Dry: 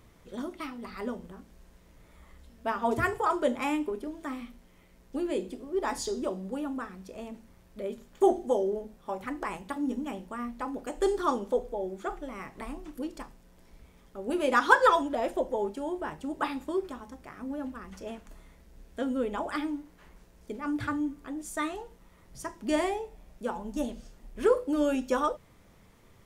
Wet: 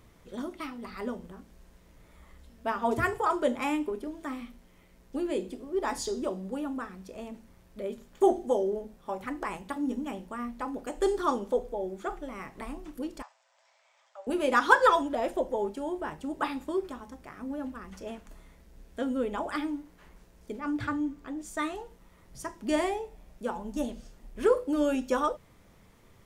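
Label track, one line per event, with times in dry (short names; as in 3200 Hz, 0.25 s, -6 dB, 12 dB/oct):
13.220000	14.270000	Chebyshev band-pass 590–7800 Hz, order 5
20.590000	21.590000	bell 11000 Hz -9 dB 0.58 oct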